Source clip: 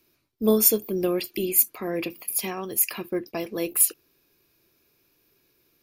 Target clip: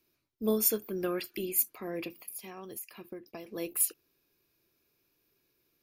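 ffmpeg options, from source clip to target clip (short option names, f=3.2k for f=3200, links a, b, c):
-filter_complex "[0:a]asettb=1/sr,asplit=3[a][b][c];[a]atrim=end=0.704[d];[b]atrim=start=0.7:end=1.41,asetpts=PTS-STARTPTS,afade=t=in:d=0.004:c=qsin,afade=t=out:st=0.706:d=0.004:c=qsin,equalizer=f=1.5k:w=2.1:g=12.5[e];[c]atrim=start=1.406[f];[d][e]acrossfade=d=0.004:c1=hsin:c2=qsin[g];[g][f]acrossfade=d=0.004:c1=qsin:c2=hsin,asettb=1/sr,asplit=3[h][i][j];[h]atrim=end=2.214[k];[i]atrim=start=2.21:end=3.48,asetpts=PTS-STARTPTS,afade=t=in:d=0.004:c=qsin,afade=t=out:st=1.266:d=0.004:c=qsin,acompressor=threshold=-31dB:ratio=12[l];[j]atrim=start=3.476[m];[k][l]acrossfade=d=0.004:c1=hsin:c2=qsin[n];[n][m]acrossfade=d=0.004:c1=qsin:c2=hsin,volume=-8.5dB"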